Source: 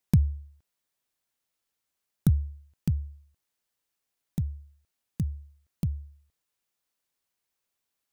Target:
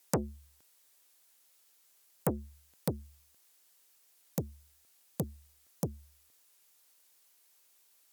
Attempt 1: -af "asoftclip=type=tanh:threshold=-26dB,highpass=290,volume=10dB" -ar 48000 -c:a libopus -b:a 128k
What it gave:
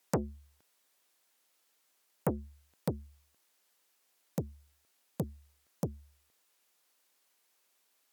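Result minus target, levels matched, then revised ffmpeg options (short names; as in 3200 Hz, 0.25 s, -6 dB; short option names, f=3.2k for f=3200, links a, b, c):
8000 Hz band -6.5 dB
-af "asoftclip=type=tanh:threshold=-26dB,highpass=290,highshelf=f=4.5k:g=9,volume=10dB" -ar 48000 -c:a libopus -b:a 128k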